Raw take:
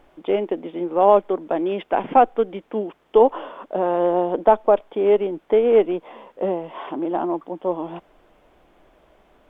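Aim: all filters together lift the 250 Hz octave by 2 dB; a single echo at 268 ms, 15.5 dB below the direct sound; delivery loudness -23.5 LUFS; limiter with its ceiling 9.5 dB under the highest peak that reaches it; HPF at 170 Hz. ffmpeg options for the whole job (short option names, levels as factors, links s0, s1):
-af "highpass=170,equalizer=f=250:t=o:g=4,alimiter=limit=0.299:level=0:latency=1,aecho=1:1:268:0.168,volume=0.891"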